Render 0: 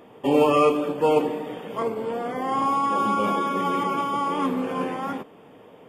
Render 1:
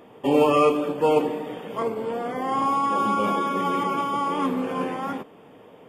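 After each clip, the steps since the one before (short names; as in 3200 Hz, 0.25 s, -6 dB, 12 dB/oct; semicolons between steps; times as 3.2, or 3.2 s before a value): nothing audible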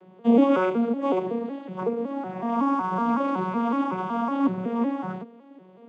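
arpeggiated vocoder major triad, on F#3, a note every 0.186 s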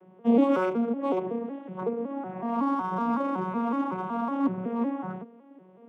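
Wiener smoothing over 9 samples; gain -3 dB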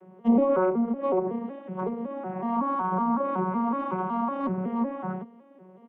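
added harmonics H 4 -36 dB, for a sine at -10 dBFS; comb 5.3 ms, depth 59%; treble ducked by the level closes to 1300 Hz, closed at -21 dBFS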